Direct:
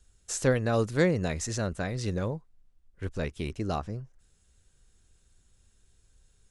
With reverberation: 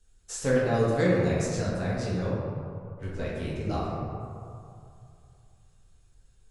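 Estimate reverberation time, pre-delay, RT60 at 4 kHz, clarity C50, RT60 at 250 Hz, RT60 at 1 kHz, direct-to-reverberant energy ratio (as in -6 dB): 2.6 s, 4 ms, 1.0 s, -1.5 dB, 2.3 s, 2.6 s, -6.5 dB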